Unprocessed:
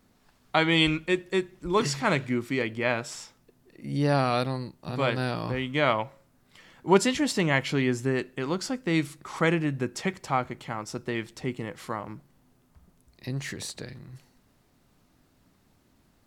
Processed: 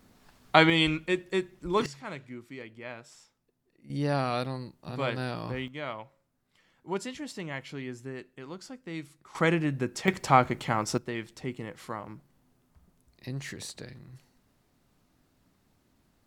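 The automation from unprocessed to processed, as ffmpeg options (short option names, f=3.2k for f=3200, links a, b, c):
-af "asetnsamples=n=441:p=0,asendcmd='0.7 volume volume -2.5dB;1.86 volume volume -15dB;3.9 volume volume -4.5dB;5.68 volume volume -13dB;9.35 volume volume -1dB;10.08 volume volume 6dB;10.98 volume volume -4dB',volume=4dB"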